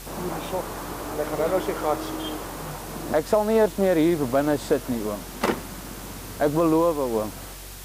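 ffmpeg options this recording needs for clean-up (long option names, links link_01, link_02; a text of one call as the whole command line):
ffmpeg -i in.wav -af "bandreject=frequency=46.7:width_type=h:width=4,bandreject=frequency=93.4:width_type=h:width=4,bandreject=frequency=140.1:width_type=h:width=4,afwtdn=0.0089" out.wav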